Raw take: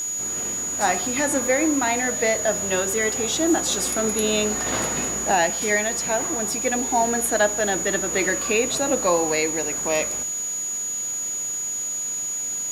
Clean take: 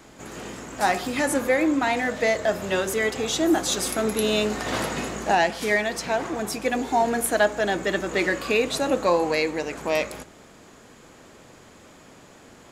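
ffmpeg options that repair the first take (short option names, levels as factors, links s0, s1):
-af "adeclick=t=4,bandreject=f=6800:w=30,afwtdn=0.0079"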